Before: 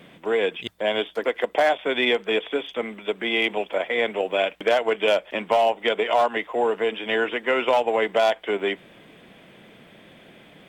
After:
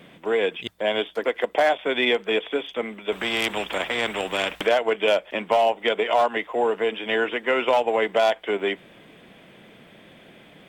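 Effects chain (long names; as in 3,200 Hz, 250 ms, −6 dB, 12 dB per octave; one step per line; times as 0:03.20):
0:03.12–0:04.67: every bin compressed towards the loudest bin 2 to 1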